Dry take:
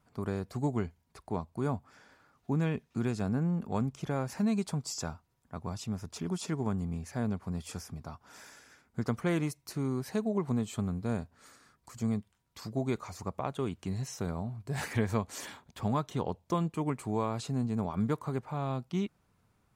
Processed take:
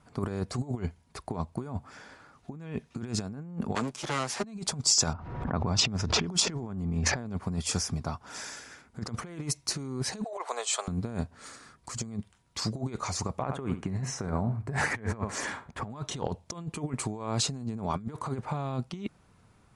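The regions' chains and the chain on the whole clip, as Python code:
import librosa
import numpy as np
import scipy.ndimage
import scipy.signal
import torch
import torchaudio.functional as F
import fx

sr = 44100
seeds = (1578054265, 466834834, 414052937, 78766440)

y = fx.chain(x, sr, fx.lower_of_two(delay_ms=8.2),
    fx.highpass(hz=620.0, slope=6),
    fx.band_squash(depth_pct=40), at=(3.75, 4.44))
y = fx.chain(y, sr, fx.env_lowpass(base_hz=1400.0, full_db=-29.5),
    fx.high_shelf(hz=5100.0, db=-10.5),
    fx.pre_swell(db_per_s=45.0), at=(5.13, 7.26))
y = fx.chain(y, sr, fx.steep_highpass(hz=530.0, slope=36),
    fx.over_compress(threshold_db=-42.0, ratio=-0.5), at=(10.24, 10.88))
y = fx.chain(y, sr, fx.high_shelf_res(hz=2500.0, db=-8.5, q=1.5),
    fx.echo_feedback(ms=69, feedback_pct=16, wet_db=-14.5), at=(13.42, 15.9))
y = scipy.signal.sosfilt(scipy.signal.butter(16, 11000.0, 'lowpass', fs=sr, output='sos'), y)
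y = fx.over_compress(y, sr, threshold_db=-36.0, ratio=-0.5)
y = fx.dynamic_eq(y, sr, hz=5700.0, q=1.0, threshold_db=-55.0, ratio=4.0, max_db=7)
y = y * librosa.db_to_amplitude(5.0)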